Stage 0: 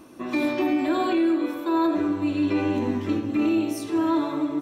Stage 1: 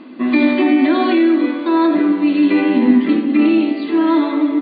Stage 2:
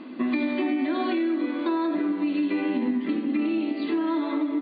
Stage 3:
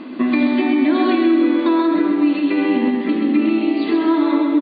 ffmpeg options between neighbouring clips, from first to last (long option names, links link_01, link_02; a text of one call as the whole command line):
ffmpeg -i in.wav -af "equalizer=frequency=250:width_type=o:width=0.33:gain=11,equalizer=frequency=2000:width_type=o:width=0.33:gain=9,equalizer=frequency=3150:width_type=o:width=0.33:gain=4,afftfilt=real='re*between(b*sr/4096,170,4800)':imag='im*between(b*sr/4096,170,4800)':win_size=4096:overlap=0.75,volume=6.5dB" out.wav
ffmpeg -i in.wav -af "acompressor=threshold=-20dB:ratio=6,volume=-3dB" out.wav
ffmpeg -i in.wav -af "aecho=1:1:130|260|390|520|650:0.562|0.236|0.0992|0.0417|0.0175,volume=7.5dB" out.wav